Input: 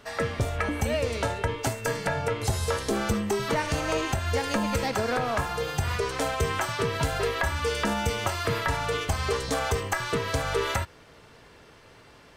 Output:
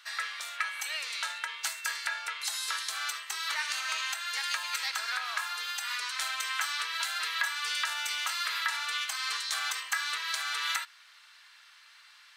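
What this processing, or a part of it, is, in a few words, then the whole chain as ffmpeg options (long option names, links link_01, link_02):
headphones lying on a table: -af "highpass=frequency=1300:width=0.5412,highpass=frequency=1300:width=1.3066,equalizer=frequency=4000:width_type=o:width=0.39:gain=6"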